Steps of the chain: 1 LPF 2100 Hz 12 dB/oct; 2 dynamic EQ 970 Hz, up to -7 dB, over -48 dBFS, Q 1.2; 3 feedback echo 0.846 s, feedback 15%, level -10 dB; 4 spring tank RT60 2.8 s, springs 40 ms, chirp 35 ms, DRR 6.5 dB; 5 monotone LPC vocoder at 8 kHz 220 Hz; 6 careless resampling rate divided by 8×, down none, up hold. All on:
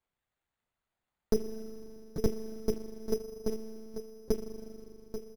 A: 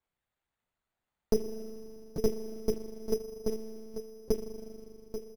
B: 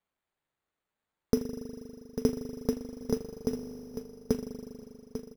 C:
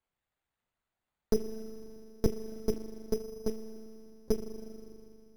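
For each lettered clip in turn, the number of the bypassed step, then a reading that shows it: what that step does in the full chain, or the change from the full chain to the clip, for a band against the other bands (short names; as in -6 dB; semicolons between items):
2, 125 Hz band -3.0 dB; 5, 250 Hz band +3.0 dB; 3, momentary loudness spread change +5 LU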